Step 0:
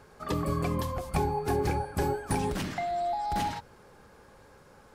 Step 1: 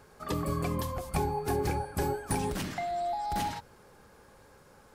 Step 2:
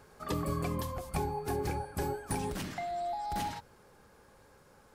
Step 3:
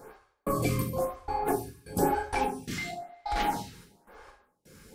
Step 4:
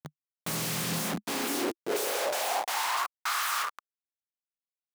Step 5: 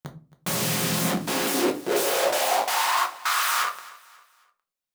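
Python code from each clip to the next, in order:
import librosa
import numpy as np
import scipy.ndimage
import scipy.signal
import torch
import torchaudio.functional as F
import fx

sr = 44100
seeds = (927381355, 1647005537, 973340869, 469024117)

y1 = fx.high_shelf(x, sr, hz=7500.0, db=6.5)
y1 = F.gain(torch.from_numpy(y1), -2.0).numpy()
y2 = fx.rider(y1, sr, range_db=10, speed_s=2.0)
y2 = F.gain(torch.from_numpy(y2), -3.5).numpy()
y3 = fx.step_gate(y2, sr, bpm=129, pattern='x...xxx.x..x', floor_db=-60.0, edge_ms=4.5)
y3 = fx.rev_double_slope(y3, sr, seeds[0], early_s=0.56, late_s=1.7, knee_db=-23, drr_db=-1.5)
y3 = fx.stagger_phaser(y3, sr, hz=1.0)
y3 = F.gain(torch.from_numpy(y3), 9.0).numpy()
y4 = fx.spec_flatten(y3, sr, power=0.21)
y4 = fx.schmitt(y4, sr, flips_db=-38.0)
y4 = fx.filter_sweep_highpass(y4, sr, from_hz=150.0, to_hz=1200.0, start_s=0.84, end_s=3.13, q=5.0)
y5 = fx.echo_feedback(y4, sr, ms=270, feedback_pct=38, wet_db=-20.0)
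y5 = fx.room_shoebox(y5, sr, seeds[1], volume_m3=160.0, walls='furnished', distance_m=0.96)
y5 = F.gain(torch.from_numpy(y5), 5.0).numpy()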